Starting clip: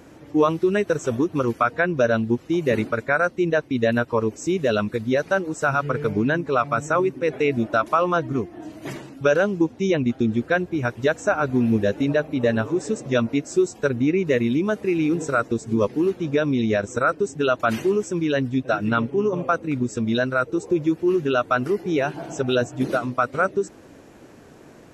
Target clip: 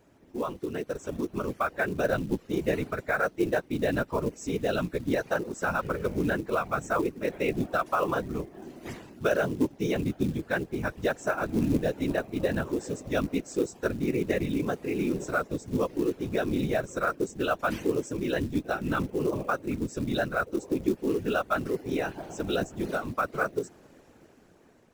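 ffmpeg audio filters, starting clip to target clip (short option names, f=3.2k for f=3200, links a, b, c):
-af "afftfilt=real='hypot(re,im)*cos(2*PI*random(0))':imag='hypot(re,im)*sin(2*PI*random(1))':win_size=512:overlap=0.75,dynaudnorm=f=360:g=7:m=8dB,acrusher=bits=6:mode=log:mix=0:aa=0.000001,volume=-8.5dB"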